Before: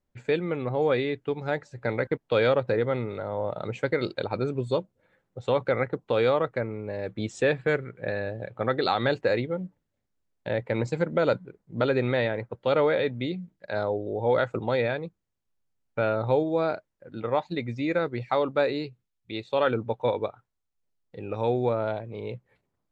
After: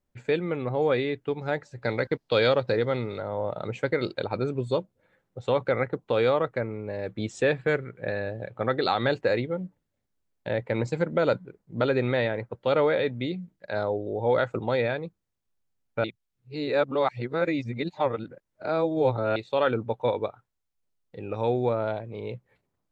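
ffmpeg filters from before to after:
-filter_complex "[0:a]asettb=1/sr,asplit=3[a][b][c];[a]atrim=end=1.824[d];[b]atrim=start=1.82:end=3.21,asetpts=PTS-STARTPTS,afade=t=in:d=0.004:c=qsin,afade=t=out:st=1.386:d=0.004:c=qsin,equalizer=f=4.6k:w=1.6:g=11[e];[c]atrim=start=3.206[f];[d][e]acrossfade=d=0.004:c1=hsin:c2=qsin[g];[g][f]acrossfade=d=0.004:c1=qsin:c2=hsin,asplit=3[h][i][j];[h]atrim=end=16.042[k];[i]atrim=start=16.038:end=19.362,asetpts=PTS-STARTPTS,areverse[l];[j]atrim=start=19.358[m];[k][l]acrossfade=d=0.004:c1=hsin:c2=hsin[n];[n][m]acrossfade=d=0.004:c1=hsin:c2=hsin"

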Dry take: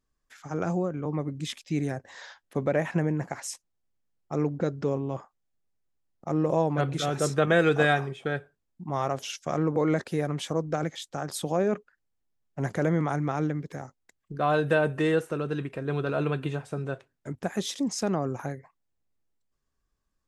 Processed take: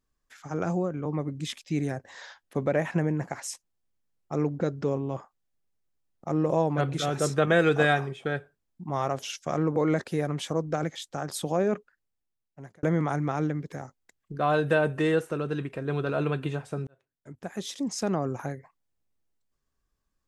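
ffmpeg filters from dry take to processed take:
-filter_complex "[0:a]asplit=3[a][b][c];[a]atrim=end=12.83,asetpts=PTS-STARTPTS,afade=t=out:st=11.74:d=1.09[d];[b]atrim=start=12.83:end=16.87,asetpts=PTS-STARTPTS,afade=t=in:d=0.004:c=hsin,afade=t=out:st=4.036:d=0.004:c=hsin[e];[c]atrim=start=16.87,asetpts=PTS-STARTPTS,afade=t=in:d=1.26[f];[d][e][f]concat=n=3:v=0:a=1"

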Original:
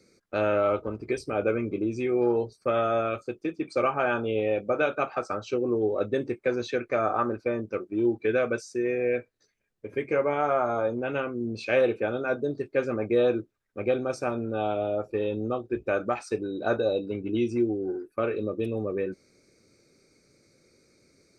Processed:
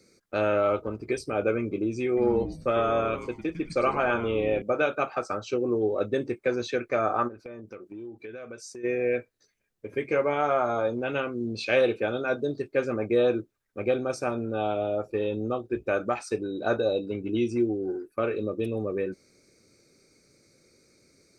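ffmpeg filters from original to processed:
-filter_complex "[0:a]asettb=1/sr,asplit=3[a][b][c];[a]atrim=end=2.074[d];[b]atrim=start=2.07:end=4.62,asetpts=PTS-STARTPTS,afade=t=in:d=0.004:c=qsin,afade=t=out:st=2.546:d=0.004:c=qsin,asplit=5[e][f][g][h][i];[f]adelay=101,afreqshift=-150,volume=-11dB[j];[g]adelay=202,afreqshift=-300,volume=-19.4dB[k];[h]adelay=303,afreqshift=-450,volume=-27.8dB[l];[i]adelay=404,afreqshift=-600,volume=-36.2dB[m];[e][j][k][l][m]amix=inputs=5:normalize=0,atrim=end_sample=112455[n];[c]atrim=start=4.616[o];[d][n]acrossfade=d=0.004:c1=hsin:c2=qsin[p];[p][o]acrossfade=d=0.004:c1=qsin:c2=hsin,asplit=3[q][r][s];[q]afade=t=out:st=7.27:d=0.02[t];[r]acompressor=threshold=-39dB:ratio=5:attack=3.2:release=140:knee=1:detection=peak,afade=t=in:st=7.27:d=0.02,afade=t=out:st=8.83:d=0.02[u];[s]afade=t=in:st=8.83:d=0.02[v];[t][u][v]amix=inputs=3:normalize=0,asettb=1/sr,asplit=3[w][x][y];[w]atrim=end=10.024[z];[x]atrim=start=10.02:end=12.62,asetpts=PTS-STARTPTS,afade=t=in:d=0.004:c=qsin,afade=t=out:st=2.596:d=0.004:c=qsin,equalizer=f=3.8k:w=1.5:g=5.5[aa];[y]atrim=start=12.616[ab];[z][aa]acrossfade=d=0.004:c1=hsin:c2=qsin[ac];[ac][ab]acrossfade=d=0.004:c1=qsin:c2=hsin,highshelf=f=5.4k:g=5"

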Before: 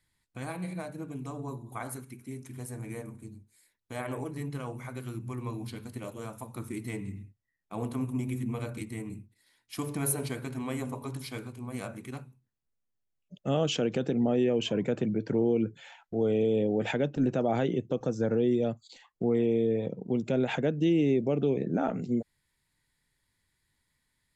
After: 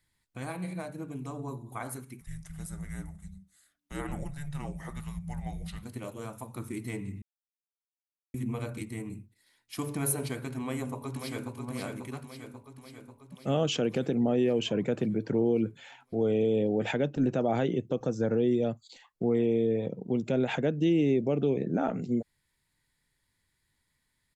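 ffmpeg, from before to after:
-filter_complex "[0:a]asettb=1/sr,asplit=3[a][b][c];[a]atrim=end=2.214[d];[b]atrim=start=2.21:end=5.83,asetpts=PTS-STARTPTS,afade=t=in:d=0.004:c=qsin,afade=t=out:st=3.616:d=0.004:c=qsin,afreqshift=-290[e];[c]atrim=start=5.826[f];[d][e]acrossfade=d=0.004:c1=hsin:c2=qsin[g];[g][f]acrossfade=d=0.004:c1=qsin:c2=hsin,asplit=2[h][i];[i]afade=t=in:st=10.61:d=0.01,afade=t=out:st=11.54:d=0.01,aecho=0:1:540|1080|1620|2160|2700|3240|3780|4320|4860|5400:0.530884|0.345075|0.224299|0.145794|0.0947662|0.061598|0.0400387|0.0260252|0.0169164|0.0109956[j];[h][j]amix=inputs=2:normalize=0,asplit=3[k][l][m];[k]atrim=end=7.22,asetpts=PTS-STARTPTS,afade=t=out:st=7.216:d=0.004:c=hsin[n];[l]atrim=start=7.22:end=8.34,asetpts=PTS-STARTPTS,volume=0[o];[m]atrim=start=8.34,asetpts=PTS-STARTPTS,afade=t=in:d=0.004:c=hsin[p];[n][o][p]concat=n=3:v=0:a=1"

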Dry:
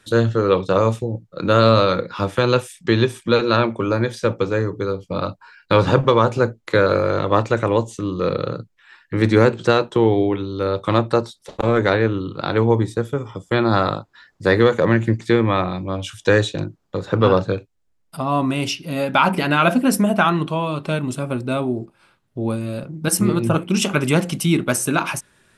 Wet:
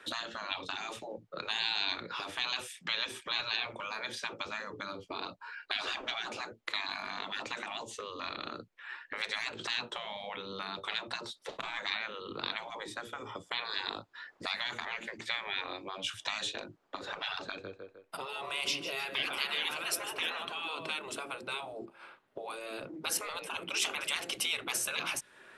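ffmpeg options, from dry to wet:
-filter_complex "[0:a]asettb=1/sr,asplit=3[a][b][c];[a]atrim=end=17.424[d];[b]atrim=start=17.42:end=20.91,asetpts=PTS-STARTPTS,afade=t=in:d=0.004:c=qsin,afade=t=out:st=3.486:d=0.004:c=qsin,aecho=1:1:153|306|459:0.2|0.0559|0.0156,atrim=end_sample=153909[e];[c]atrim=start=20.906[f];[d][e]acrossfade=d=0.004:c1=hsin:c2=qsin[g];[g][f]acrossfade=d=0.004:c1=qsin:c2=hsin,afftfilt=real='re*lt(hypot(re,im),0.2)':imag='im*lt(hypot(re,im),0.2)':win_size=1024:overlap=0.75,acrossover=split=310 3200:gain=0.0794 1 0.2[h][i][j];[h][i][j]amix=inputs=3:normalize=0,acrossover=split=190|3000[k][l][m];[l]acompressor=threshold=-46dB:ratio=6[n];[k][n][m]amix=inputs=3:normalize=0,volume=5.5dB"

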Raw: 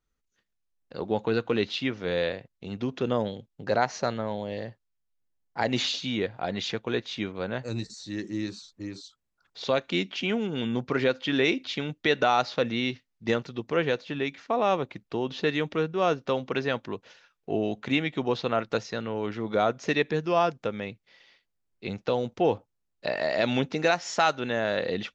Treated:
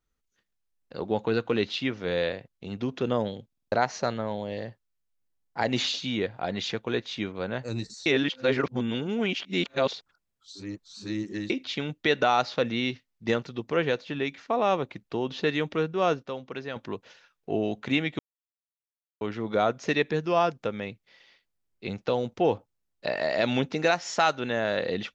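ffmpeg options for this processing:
-filter_complex "[0:a]asplit=12[a][b][c][d][e][f][g][h][i][j][k][l];[a]atrim=end=3.522[m];[b]atrim=start=3.468:end=3.522[n];[c]atrim=start=3.468:end=3.522[o];[d]atrim=start=3.468:end=3.522[p];[e]atrim=start=3.468:end=3.522[q];[f]atrim=start=3.718:end=8.062[r];[g]atrim=start=8.058:end=11.502,asetpts=PTS-STARTPTS,areverse[s];[h]atrim=start=11.498:end=16.232[t];[i]atrim=start=16.228:end=16.762,asetpts=PTS-STARTPTS,volume=-8dB[u];[j]atrim=start=16.758:end=18.19,asetpts=PTS-STARTPTS,afade=t=out:st=1.428:d=0.004:c=hsin[v];[k]atrim=start=18.19:end=19.21,asetpts=PTS-STARTPTS,volume=0[w];[l]atrim=start=19.21,asetpts=PTS-STARTPTS,afade=t=in:d=0.004:c=hsin[x];[m][n]acrossfade=d=0.004:c1=hsin:c2=hsin[y];[y][o]acrossfade=d=0.004:c1=hsin:c2=hsin[z];[z][p]acrossfade=d=0.004:c1=hsin:c2=hsin[aa];[aa][q]acrossfade=d=0.004:c1=hsin:c2=hsin[ab];[ab][r]acrossfade=d=0.004:c1=hsin:c2=hsin[ac];[ac][s]acrossfade=d=0.004:c1=hsin:c2=hsin[ad];[ad][t]acrossfade=d=0.004:c1=hsin:c2=hsin[ae];[ae][u]acrossfade=d=0.004:c1=hsin:c2=hsin[af];[v][w][x]concat=n=3:v=0:a=1[ag];[af][ag]acrossfade=d=0.004:c1=hsin:c2=hsin"

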